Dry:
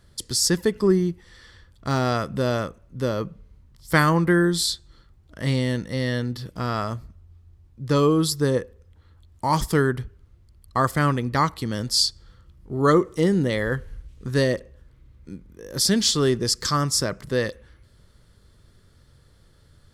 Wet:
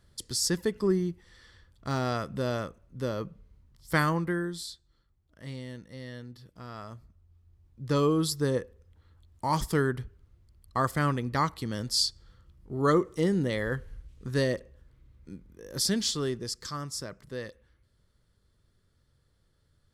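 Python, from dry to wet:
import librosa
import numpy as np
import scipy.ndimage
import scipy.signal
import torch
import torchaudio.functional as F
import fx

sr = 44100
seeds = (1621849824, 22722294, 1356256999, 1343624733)

y = fx.gain(x, sr, db=fx.line((4.04, -7.0), (4.71, -17.0), (6.67, -17.0), (7.83, -6.0), (15.76, -6.0), (16.68, -14.0)))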